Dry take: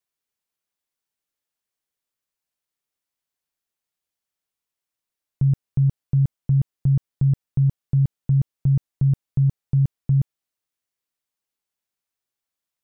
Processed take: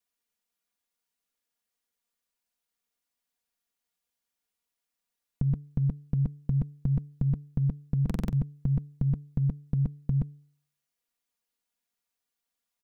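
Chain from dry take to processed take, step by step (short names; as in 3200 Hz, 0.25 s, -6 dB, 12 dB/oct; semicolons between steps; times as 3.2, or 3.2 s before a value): comb 4.2 ms, depth 73%; de-hum 145 Hz, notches 3; stuck buffer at 8.05, samples 2048, times 5; gain -1.5 dB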